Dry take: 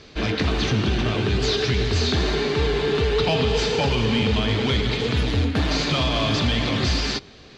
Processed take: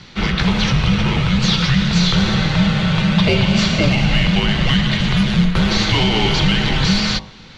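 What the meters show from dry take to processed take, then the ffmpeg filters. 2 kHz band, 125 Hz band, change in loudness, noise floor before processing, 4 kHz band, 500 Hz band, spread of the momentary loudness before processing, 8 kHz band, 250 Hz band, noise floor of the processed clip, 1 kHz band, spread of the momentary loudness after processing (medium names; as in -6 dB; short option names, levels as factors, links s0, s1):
+7.0 dB, +7.0 dB, +6.0 dB, -46 dBFS, +6.0 dB, -2.0 dB, 2 LU, +5.5 dB, +8.5 dB, -39 dBFS, +4.5 dB, 2 LU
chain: -af "afreqshift=-260,bandreject=f=51:t=h:w=4,bandreject=f=102:t=h:w=4,bandreject=f=153:t=h:w=4,bandreject=f=204:t=h:w=4,bandreject=f=255:t=h:w=4,bandreject=f=306:t=h:w=4,bandreject=f=357:t=h:w=4,bandreject=f=408:t=h:w=4,bandreject=f=459:t=h:w=4,bandreject=f=510:t=h:w=4,bandreject=f=561:t=h:w=4,bandreject=f=612:t=h:w=4,bandreject=f=663:t=h:w=4,bandreject=f=714:t=h:w=4,bandreject=f=765:t=h:w=4,bandreject=f=816:t=h:w=4,bandreject=f=867:t=h:w=4,bandreject=f=918:t=h:w=4,bandreject=f=969:t=h:w=4,bandreject=f=1020:t=h:w=4,bandreject=f=1071:t=h:w=4,bandreject=f=1122:t=h:w=4,volume=2.11"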